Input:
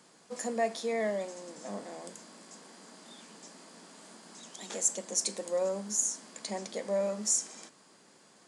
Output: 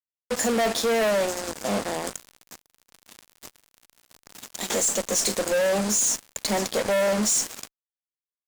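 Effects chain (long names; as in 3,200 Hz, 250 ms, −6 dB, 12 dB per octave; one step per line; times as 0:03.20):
fuzz pedal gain 43 dB, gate −44 dBFS
level −7 dB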